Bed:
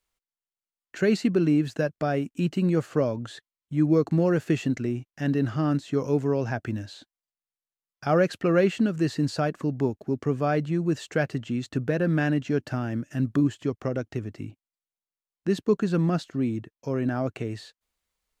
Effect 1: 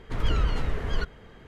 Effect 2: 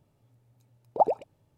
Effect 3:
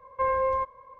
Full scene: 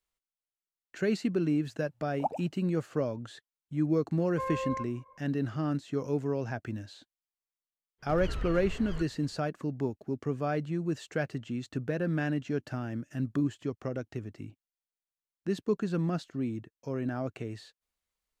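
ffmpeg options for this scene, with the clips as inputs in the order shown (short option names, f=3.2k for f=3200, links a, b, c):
-filter_complex "[0:a]volume=-6.5dB[a];[2:a]equalizer=f=380:t=o:w=0.77:g=-12,atrim=end=1.57,asetpts=PTS-STARTPTS,volume=-7.5dB,afade=t=in:d=0.004:c=hsin,afade=t=out:st=1.566:d=0.004:c=hsin,adelay=1240[b];[3:a]atrim=end=0.99,asetpts=PTS-STARTPTS,volume=-9.5dB,afade=t=in:d=0.004:c=hsin,afade=t=out:st=0.986:d=0.004:c=hsin,adelay=4190[c];[1:a]atrim=end=1.47,asetpts=PTS-STARTPTS,volume=-11dB,afade=t=in:d=0.1,afade=t=out:st=1.37:d=0.1,adelay=7980[d];[a][b][c][d]amix=inputs=4:normalize=0"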